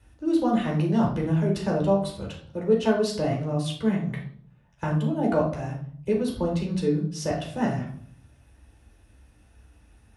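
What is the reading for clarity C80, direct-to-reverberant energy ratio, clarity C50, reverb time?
11.0 dB, -2.0 dB, 6.5 dB, 0.55 s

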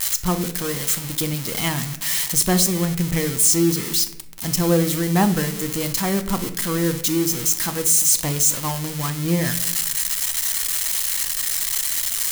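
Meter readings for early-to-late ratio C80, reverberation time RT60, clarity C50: 15.5 dB, 0.80 s, 13.0 dB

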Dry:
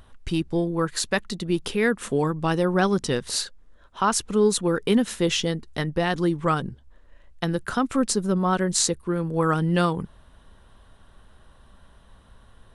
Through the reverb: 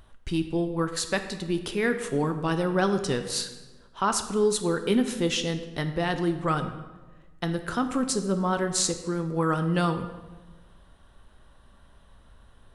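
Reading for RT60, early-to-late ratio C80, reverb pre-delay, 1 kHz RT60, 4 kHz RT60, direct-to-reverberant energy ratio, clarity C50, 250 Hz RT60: 1.2 s, 11.5 dB, 3 ms, 1.2 s, 0.90 s, 7.0 dB, 10.0 dB, 1.4 s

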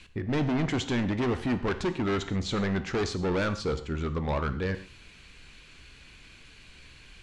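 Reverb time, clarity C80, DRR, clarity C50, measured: not exponential, 15.5 dB, 9.5 dB, 12.5 dB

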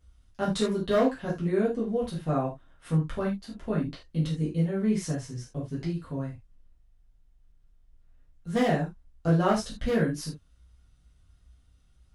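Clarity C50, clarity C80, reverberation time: 7.5 dB, 16.0 dB, not exponential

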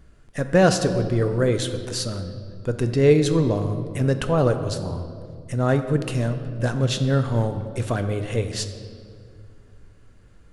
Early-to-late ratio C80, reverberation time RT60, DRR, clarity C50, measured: 10.5 dB, 2.2 s, 7.5 dB, 9.5 dB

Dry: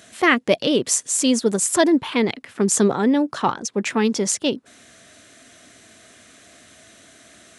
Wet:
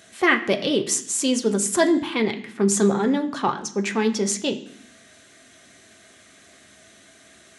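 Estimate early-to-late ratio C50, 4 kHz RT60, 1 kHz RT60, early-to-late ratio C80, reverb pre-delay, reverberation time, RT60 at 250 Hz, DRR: 13.0 dB, 0.80 s, 0.65 s, 15.5 dB, 3 ms, 0.65 s, 0.95 s, 3.5 dB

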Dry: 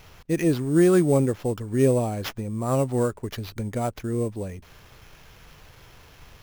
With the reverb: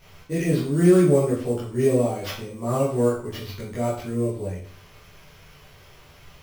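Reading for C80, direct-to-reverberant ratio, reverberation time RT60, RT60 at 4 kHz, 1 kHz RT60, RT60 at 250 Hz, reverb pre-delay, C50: 8.5 dB, -9.5 dB, 0.45 s, 0.45 s, 0.45 s, 0.45 s, 12 ms, 4.5 dB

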